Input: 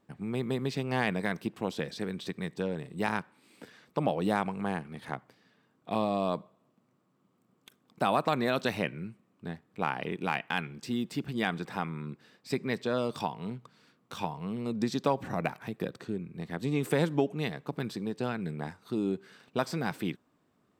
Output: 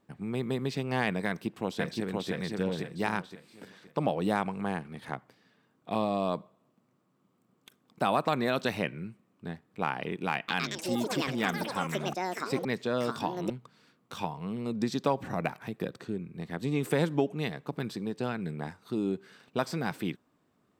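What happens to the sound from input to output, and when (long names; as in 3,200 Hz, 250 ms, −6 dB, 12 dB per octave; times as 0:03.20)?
0:01.27–0:02.31: delay throw 520 ms, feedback 35%, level −2 dB
0:10.33–0:14.85: delay with pitch and tempo change per echo 152 ms, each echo +7 semitones, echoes 3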